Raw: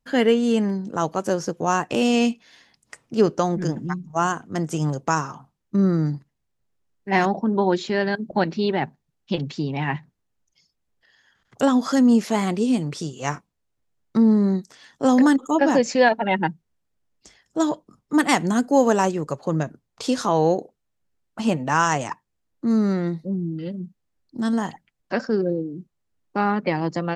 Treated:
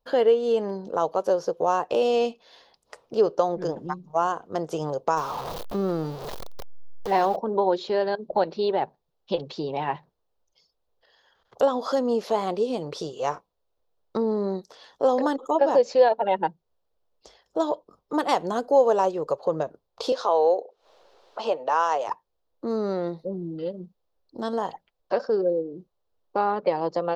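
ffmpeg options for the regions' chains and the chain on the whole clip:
-filter_complex "[0:a]asettb=1/sr,asplit=3[a][b][c];[a]atrim=end=5.174[d];[b]atrim=start=5.17:end=7.36,asetpts=PTS-STARTPTS,afade=t=in:d=0.004:c=qsin,afade=t=out:st=2.186:d=0.004:c=qsin,aeval=exprs='val(0)+0.5*0.0316*sgn(val(0))':c=same,equalizer=f=7.5k:w=1.3:g=3,acompressor=mode=upward:threshold=-28dB:ratio=2.5:attack=3.2:release=140:knee=2.83:detection=peak[e];[c]atrim=start=7.356[f];[d][e]acrossfade=d=0.004:c1=hsin:c2=qsin[g];[g][f]acrossfade=d=0.004:c1=qsin:c2=hsin,asettb=1/sr,asplit=3[h][i][j];[h]atrim=end=20.124[k];[i]atrim=start=20.12:end=22.08,asetpts=PTS-STARTPTS,afade=t=in:d=0.004:c=qsin,afade=t=out:st=1.956:d=0.004:c=qsin,acrossover=split=330 7400:gain=0.0891 1 0.0794[l][m][n];[l][m][n]amix=inputs=3:normalize=0,acompressor=mode=upward:threshold=-35dB:ratio=2.5:attack=3.2:release=140:knee=2.83:detection=peak[o];[j]atrim=start=22.076[p];[k][o]acrossfade=d=0.004:c1=hsin:c2=qsin[q];[q][p]acrossfade=d=0.004:c1=qsin:c2=hsin,equalizer=f=125:t=o:w=1:g=-9,equalizer=f=250:t=o:w=1:g=-9,equalizer=f=500:t=o:w=1:g=11,equalizer=f=1k:t=o:w=1:g=5,equalizer=f=2k:t=o:w=1:g=-9,equalizer=f=4k:t=o:w=1:g=6,equalizer=f=8k:t=o:w=1:g=-12,acompressor=threshold=-29dB:ratio=1.5"

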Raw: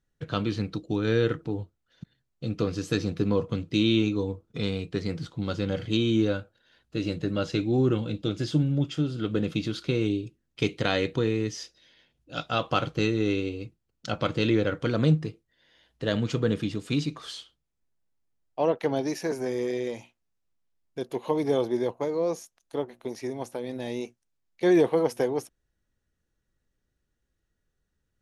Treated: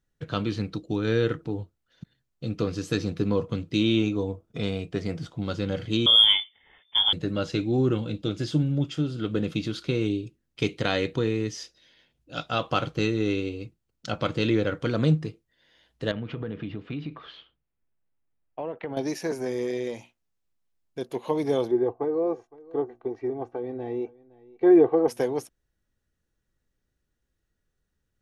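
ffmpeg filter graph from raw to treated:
-filter_complex "[0:a]asettb=1/sr,asplit=3[a][b][c];[a]atrim=end=3.814[d];[b]atrim=start=3.81:end=5.46,asetpts=PTS-STARTPTS,afade=t=in:d=0.004:c=qsin,afade=t=out:st=1.646:d=0.004:c=qsin,equalizer=f=670:w=4.2:g=7.5,bandreject=f=4.1k:w=8.7[e];[c]atrim=start=5.456[f];[d][e]acrossfade=d=0.004:c1=hsin:c2=qsin[g];[g][f]acrossfade=d=0.004:c1=qsin:c2=hsin,asettb=1/sr,asplit=3[h][i][j];[h]atrim=end=6.064[k];[i]atrim=start=6.06:end=7.13,asetpts=PTS-STARTPTS,afade=t=in:d=0.004:c=qsin,afade=t=out:st=1.066:d=0.004:c=qsin,lowpass=f=3.1k:t=q:w=0.5098,lowpass=f=3.1k:t=q:w=0.6013,lowpass=f=3.1k:t=q:w=0.9,lowpass=f=3.1k:t=q:w=2.563,afreqshift=-3600,asubboost=boost=7:cutoff=130,acontrast=67[l];[j]atrim=start=7.126[m];[k][l]acrossfade=d=0.004:c1=hsin:c2=qsin[n];[n][m]acrossfade=d=0.004:c1=qsin:c2=hsin,asettb=1/sr,asplit=3[o][p][q];[o]atrim=end=16.114[r];[p]atrim=start=16.11:end=18.97,asetpts=PTS-STARTPTS,afade=t=in:d=0.004:c=qsin,afade=t=out:st=2.856:d=0.004:c=qsin,lowpass=f=2.9k:w=0.5412,lowpass=f=2.9k:w=1.3066,acompressor=threshold=-29dB:ratio=5:attack=3.2:release=140:knee=1:detection=peak[s];[q]atrim=start=18.966[t];[r][s]acrossfade=d=0.004:c1=hsin:c2=qsin[u];[u][t]acrossfade=d=0.004:c1=qsin:c2=hsin,asettb=1/sr,asplit=3[v][w][x];[v]atrim=end=21.714[y];[w]atrim=start=21.71:end=25.08,asetpts=PTS-STARTPTS,afade=t=in:d=0.004:c=qsin,afade=t=out:st=3.366:d=0.004:c=qsin,lowpass=1.2k,aecho=1:1:2.6:0.75,atrim=end_sample=148617,aecho=1:1:513:0.0794,atrim=end_sample=148617[z];[x]atrim=start=25.076[aa];[y][z]acrossfade=d=0.004:c1=hsin:c2=qsin[ab];[ab][aa]acrossfade=d=0.004:c1=qsin:c2=hsin"

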